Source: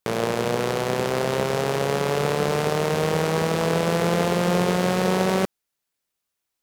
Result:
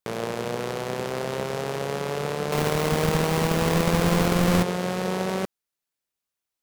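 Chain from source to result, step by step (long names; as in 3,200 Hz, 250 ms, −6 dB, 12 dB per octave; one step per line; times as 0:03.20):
0:02.52–0:04.63: each half-wave held at its own peak
level −5.5 dB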